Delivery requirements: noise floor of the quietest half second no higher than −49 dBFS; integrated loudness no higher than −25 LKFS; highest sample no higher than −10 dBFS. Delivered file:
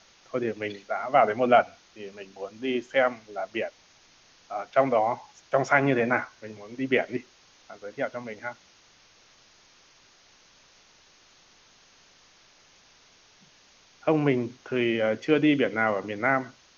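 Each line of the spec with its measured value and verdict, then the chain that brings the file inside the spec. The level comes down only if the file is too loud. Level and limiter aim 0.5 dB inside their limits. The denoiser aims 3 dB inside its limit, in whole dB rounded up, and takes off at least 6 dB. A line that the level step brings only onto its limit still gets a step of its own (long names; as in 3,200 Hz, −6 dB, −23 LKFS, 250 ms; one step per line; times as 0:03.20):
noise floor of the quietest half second −58 dBFS: in spec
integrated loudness −26.0 LKFS: in spec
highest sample −6.5 dBFS: out of spec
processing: brickwall limiter −10.5 dBFS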